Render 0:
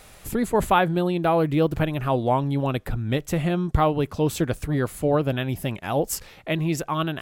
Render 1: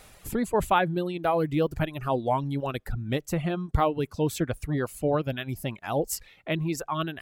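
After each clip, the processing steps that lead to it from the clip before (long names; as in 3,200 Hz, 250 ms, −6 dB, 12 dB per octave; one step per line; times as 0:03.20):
reverb reduction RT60 1.1 s
level −3 dB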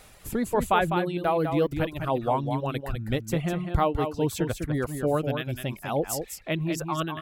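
single-tap delay 202 ms −7 dB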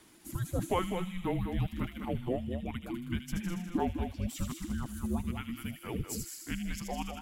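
spectral magnitudes quantised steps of 15 dB
frequency shifter −360 Hz
delay with a high-pass on its return 78 ms, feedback 70%, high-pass 2,900 Hz, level −4 dB
level −7.5 dB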